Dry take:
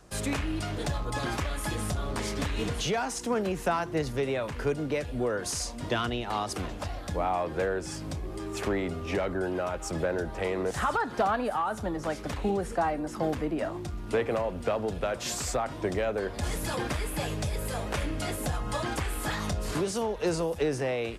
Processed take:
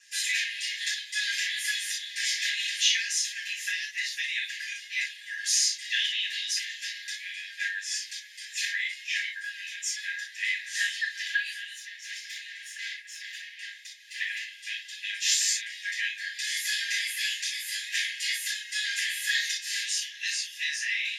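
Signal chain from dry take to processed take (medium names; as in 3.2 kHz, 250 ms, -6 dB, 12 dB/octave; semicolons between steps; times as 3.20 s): 11.74–14.20 s: valve stage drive 35 dB, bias 0.55; brick-wall FIR high-pass 1.6 kHz; reverberation, pre-delay 3 ms, DRR -8 dB; trim -4.5 dB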